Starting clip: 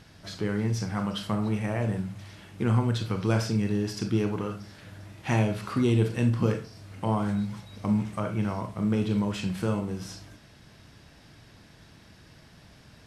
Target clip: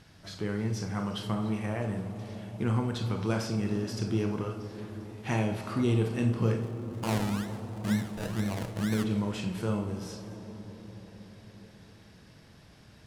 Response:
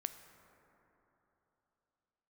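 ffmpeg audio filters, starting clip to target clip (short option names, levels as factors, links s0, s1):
-filter_complex "[0:a]asplit=3[s0][s1][s2];[s0]afade=t=out:st=6.61:d=0.02[s3];[s1]acrusher=samples=32:mix=1:aa=0.000001:lfo=1:lforange=19.2:lforate=2.1,afade=t=in:st=6.61:d=0.02,afade=t=out:st=9.03:d=0.02[s4];[s2]afade=t=in:st=9.03:d=0.02[s5];[s3][s4][s5]amix=inputs=3:normalize=0[s6];[1:a]atrim=start_sample=2205,asetrate=24696,aresample=44100[s7];[s6][s7]afir=irnorm=-1:irlink=0,volume=0.596"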